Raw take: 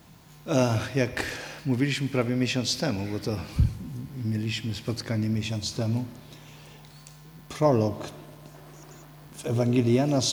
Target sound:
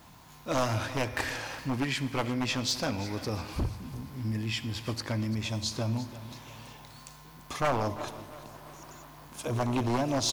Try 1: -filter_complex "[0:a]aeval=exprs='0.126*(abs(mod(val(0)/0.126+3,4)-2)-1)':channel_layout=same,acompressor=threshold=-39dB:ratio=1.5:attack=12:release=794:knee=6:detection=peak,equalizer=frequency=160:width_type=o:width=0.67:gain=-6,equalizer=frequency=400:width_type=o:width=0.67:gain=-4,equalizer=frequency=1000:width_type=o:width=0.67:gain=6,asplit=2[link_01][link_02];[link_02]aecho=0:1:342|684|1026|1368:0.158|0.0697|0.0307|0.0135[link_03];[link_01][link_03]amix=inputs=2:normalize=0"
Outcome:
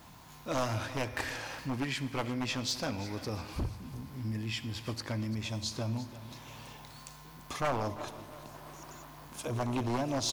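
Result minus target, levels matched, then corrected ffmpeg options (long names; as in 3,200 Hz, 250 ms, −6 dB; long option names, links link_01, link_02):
downward compressor: peak gain reduction +4 dB
-filter_complex "[0:a]aeval=exprs='0.126*(abs(mod(val(0)/0.126+3,4)-2)-1)':channel_layout=same,acompressor=threshold=-27.5dB:ratio=1.5:attack=12:release=794:knee=6:detection=peak,equalizer=frequency=160:width_type=o:width=0.67:gain=-6,equalizer=frequency=400:width_type=o:width=0.67:gain=-4,equalizer=frequency=1000:width_type=o:width=0.67:gain=6,asplit=2[link_01][link_02];[link_02]aecho=0:1:342|684|1026|1368:0.158|0.0697|0.0307|0.0135[link_03];[link_01][link_03]amix=inputs=2:normalize=0"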